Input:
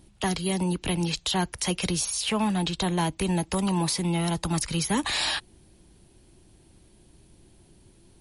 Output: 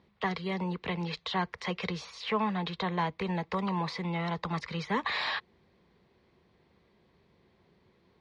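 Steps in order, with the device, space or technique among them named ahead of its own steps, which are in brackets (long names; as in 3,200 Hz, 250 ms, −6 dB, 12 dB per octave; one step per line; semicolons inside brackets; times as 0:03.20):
guitar cabinet (loudspeaker in its box 110–4,100 Hz, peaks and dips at 120 Hz −7 dB, 310 Hz −10 dB, 460 Hz +8 dB, 1,100 Hz +9 dB, 2,000 Hz +8 dB, 2,900 Hz −5 dB)
level −5.5 dB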